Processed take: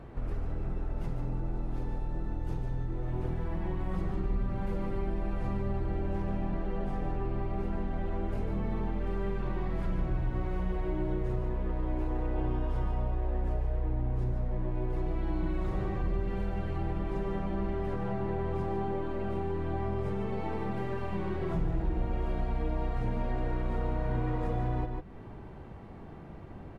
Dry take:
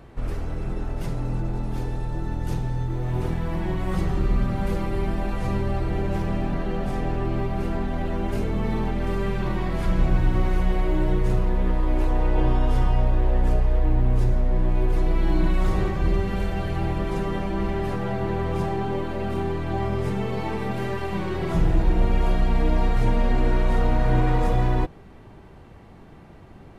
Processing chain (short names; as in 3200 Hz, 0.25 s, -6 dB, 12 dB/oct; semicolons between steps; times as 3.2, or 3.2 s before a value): high shelf 2900 Hz -12 dB; on a send: echo 0.148 s -7.5 dB; on the sum: compressor 2:1, threshold -35 dBFS, peak gain reduction 11.5 dB